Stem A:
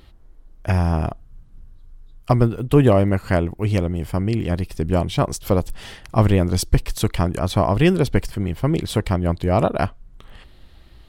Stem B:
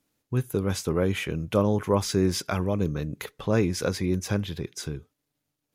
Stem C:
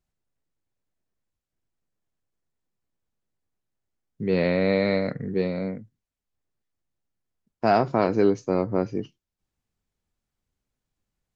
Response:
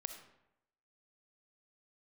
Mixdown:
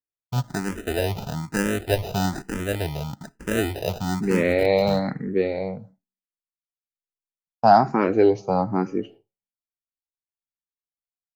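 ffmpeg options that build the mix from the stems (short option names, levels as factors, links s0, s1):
-filter_complex "[1:a]acrusher=samples=40:mix=1:aa=0.000001,volume=1.19,asplit=2[s0][s1];[s1]volume=0.141[s2];[2:a]equalizer=f=810:t=o:w=0.23:g=11.5,volume=1.33,asplit=2[s3][s4];[s4]volume=0.316[s5];[3:a]atrim=start_sample=2205[s6];[s2][s5]amix=inputs=2:normalize=0[s7];[s7][s6]afir=irnorm=-1:irlink=0[s8];[s0][s3][s8]amix=inputs=3:normalize=0,agate=range=0.0224:threshold=0.0126:ratio=3:detection=peak,asplit=2[s9][s10];[s10]afreqshift=1.1[s11];[s9][s11]amix=inputs=2:normalize=1"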